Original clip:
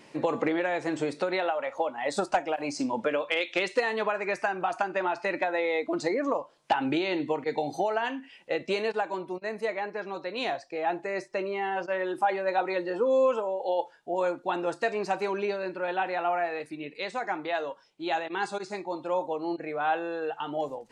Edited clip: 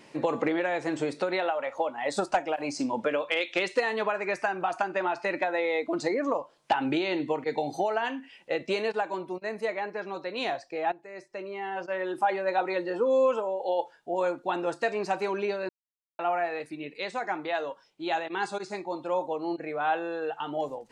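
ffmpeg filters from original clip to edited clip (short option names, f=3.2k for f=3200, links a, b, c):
-filter_complex "[0:a]asplit=4[a][b][c][d];[a]atrim=end=10.92,asetpts=PTS-STARTPTS,afade=t=out:st=10.916:d=0.004:c=hsin:silence=0.141254[e];[b]atrim=start=10.92:end=15.69,asetpts=PTS-STARTPTS,afade=t=in:d=1.32:silence=0.141254,afade=t=out:st=4.766:d=0.004:c=hsin[f];[c]atrim=start=15.69:end=16.19,asetpts=PTS-STARTPTS,volume=0[g];[d]atrim=start=16.19,asetpts=PTS-STARTPTS,afade=t=in:d=0.004:c=hsin[h];[e][f][g][h]concat=n=4:v=0:a=1"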